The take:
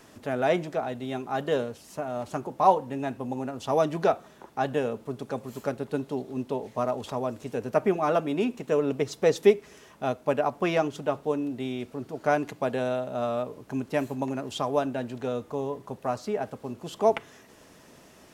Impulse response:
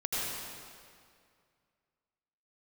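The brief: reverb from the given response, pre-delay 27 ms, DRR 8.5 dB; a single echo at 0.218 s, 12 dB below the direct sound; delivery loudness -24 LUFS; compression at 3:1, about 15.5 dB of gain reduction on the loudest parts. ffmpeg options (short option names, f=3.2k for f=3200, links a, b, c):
-filter_complex "[0:a]acompressor=threshold=-35dB:ratio=3,aecho=1:1:218:0.251,asplit=2[a][b];[1:a]atrim=start_sample=2205,adelay=27[c];[b][c]afir=irnorm=-1:irlink=0,volume=-15.5dB[d];[a][d]amix=inputs=2:normalize=0,volume=13dB"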